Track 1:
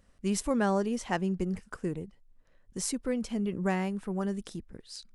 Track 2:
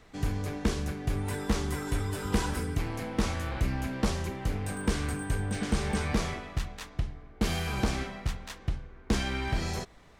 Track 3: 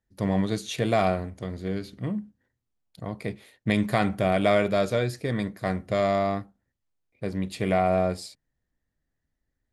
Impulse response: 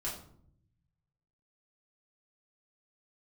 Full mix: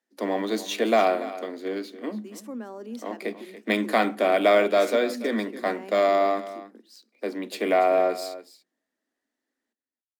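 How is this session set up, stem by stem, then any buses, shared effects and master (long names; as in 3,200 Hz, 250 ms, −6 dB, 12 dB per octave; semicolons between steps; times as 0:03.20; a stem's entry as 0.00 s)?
−6.5 dB, 2.00 s, send −20 dB, echo send −24 dB, low-shelf EQ 280 Hz +11 dB; brickwall limiter −22 dBFS, peak gain reduction 9.5 dB
muted
+3.0 dB, 0.00 s, send −23 dB, echo send −14.5 dB, no processing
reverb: on, RT60 0.65 s, pre-delay 3 ms
echo: single-tap delay 286 ms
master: Butterworth high-pass 220 Hz 96 dB per octave; linearly interpolated sample-rate reduction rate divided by 2×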